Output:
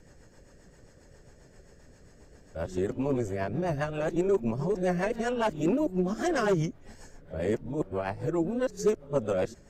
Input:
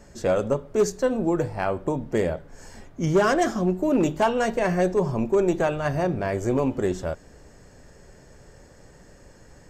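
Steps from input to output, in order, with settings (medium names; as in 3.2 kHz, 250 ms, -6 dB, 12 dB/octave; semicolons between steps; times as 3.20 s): reverse the whole clip; rotary cabinet horn 7.5 Hz; trim -3.5 dB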